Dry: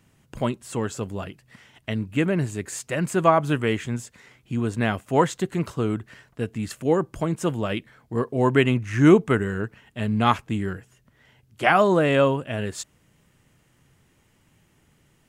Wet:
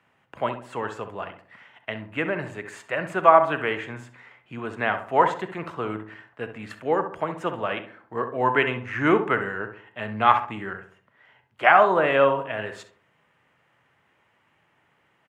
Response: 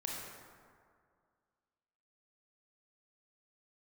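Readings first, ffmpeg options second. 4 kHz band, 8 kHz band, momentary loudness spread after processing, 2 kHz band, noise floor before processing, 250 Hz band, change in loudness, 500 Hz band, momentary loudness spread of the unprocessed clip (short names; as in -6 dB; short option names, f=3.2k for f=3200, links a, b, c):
-3.0 dB, under -15 dB, 19 LU, +3.0 dB, -63 dBFS, -8.0 dB, 0.0 dB, -1.0 dB, 14 LU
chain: -filter_complex "[0:a]highpass=91,acrossover=split=540 2800:gain=0.158 1 0.0794[a][b][c];[a][b][c]amix=inputs=3:normalize=0,asplit=2[d][e];[e]adelay=65,lowpass=f=1.3k:p=1,volume=-8dB,asplit=2[f][g];[g]adelay=65,lowpass=f=1.3k:p=1,volume=0.47,asplit=2[h][i];[i]adelay=65,lowpass=f=1.3k:p=1,volume=0.47,asplit=2[j][k];[k]adelay=65,lowpass=f=1.3k:p=1,volume=0.47,asplit=2[l][m];[m]adelay=65,lowpass=f=1.3k:p=1,volume=0.47[n];[d][f][h][j][l][n]amix=inputs=6:normalize=0,asplit=2[o][p];[1:a]atrim=start_sample=2205,afade=t=out:st=0.13:d=0.01,atrim=end_sample=6174[q];[p][q]afir=irnorm=-1:irlink=0,volume=-5.5dB[r];[o][r]amix=inputs=2:normalize=0,volume=1.5dB"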